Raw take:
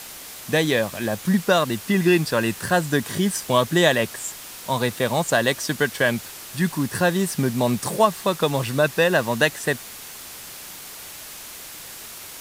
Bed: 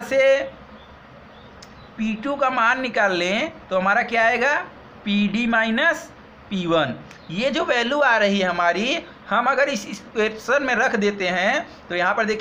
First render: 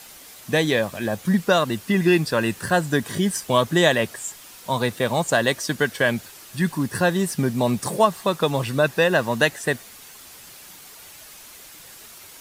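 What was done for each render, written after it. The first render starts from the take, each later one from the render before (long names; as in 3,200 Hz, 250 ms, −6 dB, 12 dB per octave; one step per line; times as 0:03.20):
broadband denoise 7 dB, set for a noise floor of −39 dBFS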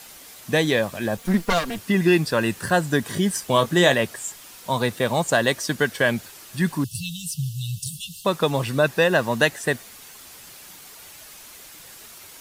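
0:01.17–0:01.78: lower of the sound and its delayed copy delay 4.3 ms
0:03.54–0:03.94: double-tracking delay 22 ms −9.5 dB
0:06.84–0:08.25: linear-phase brick-wall band-stop 170–2,600 Hz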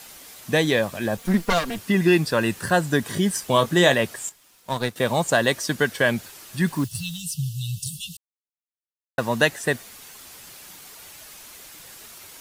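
0:04.29–0:04.96: power curve on the samples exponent 1.4
0:06.67–0:07.22: one scale factor per block 5 bits
0:08.17–0:09.18: silence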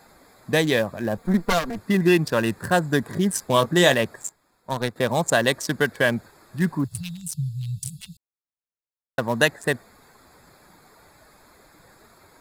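adaptive Wiener filter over 15 samples
high-shelf EQ 7,600 Hz +8 dB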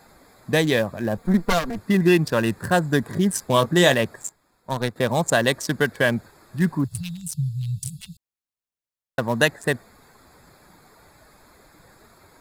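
low-shelf EQ 190 Hz +3.5 dB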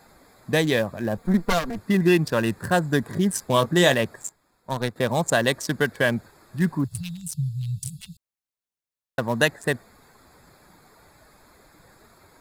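level −1.5 dB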